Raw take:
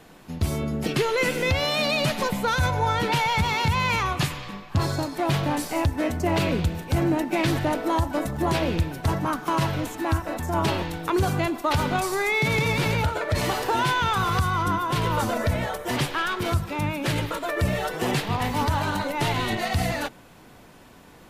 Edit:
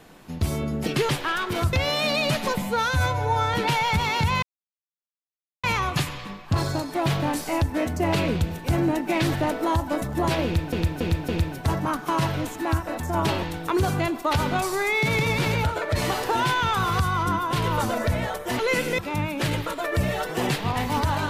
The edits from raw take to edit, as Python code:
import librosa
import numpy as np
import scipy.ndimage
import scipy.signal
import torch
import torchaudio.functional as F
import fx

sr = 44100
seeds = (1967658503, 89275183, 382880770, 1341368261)

y = fx.edit(x, sr, fx.swap(start_s=1.09, length_s=0.39, other_s=15.99, other_length_s=0.64),
    fx.stretch_span(start_s=2.37, length_s=0.61, factor=1.5),
    fx.insert_silence(at_s=3.87, length_s=1.21),
    fx.repeat(start_s=8.68, length_s=0.28, count=4), tone=tone)